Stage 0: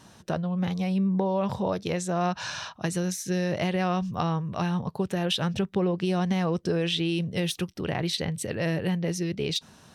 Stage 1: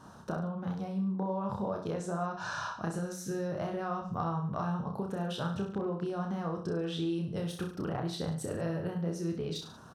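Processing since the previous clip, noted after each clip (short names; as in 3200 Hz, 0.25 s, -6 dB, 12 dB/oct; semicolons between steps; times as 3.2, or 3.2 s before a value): resonant high shelf 1700 Hz -7 dB, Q 3; compressor 5:1, threshold -32 dBFS, peak gain reduction 10.5 dB; reverse bouncing-ball echo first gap 30 ms, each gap 1.1×, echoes 5; gain -1.5 dB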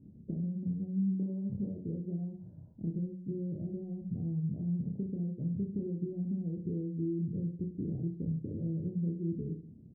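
inverse Chebyshev low-pass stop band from 1100 Hz, stop band 60 dB; gain +1.5 dB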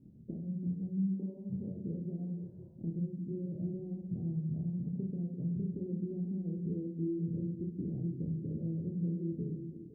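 notches 50/100/150/200 Hz; flange 1.4 Hz, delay 4.9 ms, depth 4.6 ms, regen -78%; delay with a stepping band-pass 0.17 s, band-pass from 160 Hz, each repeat 0.7 oct, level -5.5 dB; gain +2.5 dB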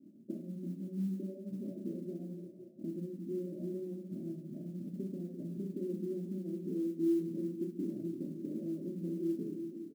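elliptic band-pass 160–630 Hz; comb 3.2 ms, depth 82%; modulation noise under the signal 32 dB; gain +1 dB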